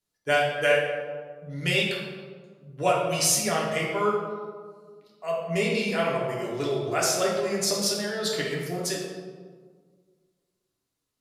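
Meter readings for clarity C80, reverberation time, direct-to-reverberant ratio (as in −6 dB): 3.5 dB, 1.7 s, −4.0 dB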